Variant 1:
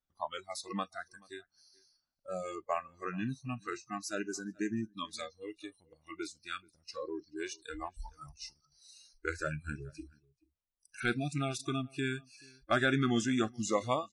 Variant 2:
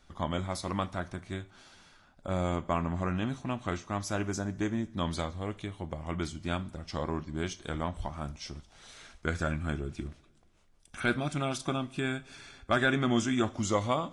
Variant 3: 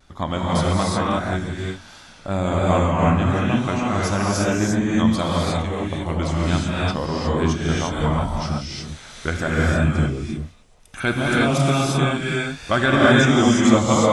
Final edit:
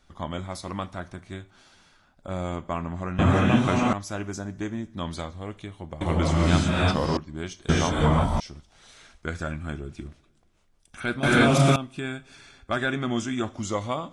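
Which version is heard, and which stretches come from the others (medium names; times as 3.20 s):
2
3.19–3.93 s: from 3
6.01–7.17 s: from 3
7.69–8.40 s: from 3
11.23–11.76 s: from 3
not used: 1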